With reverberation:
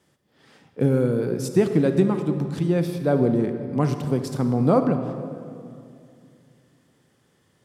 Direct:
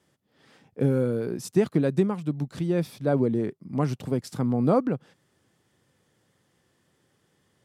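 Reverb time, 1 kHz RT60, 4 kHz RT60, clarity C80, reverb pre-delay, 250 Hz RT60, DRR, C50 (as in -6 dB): 2.5 s, 2.3 s, 1.5 s, 9.0 dB, 32 ms, 3.0 s, 7.0 dB, 8.0 dB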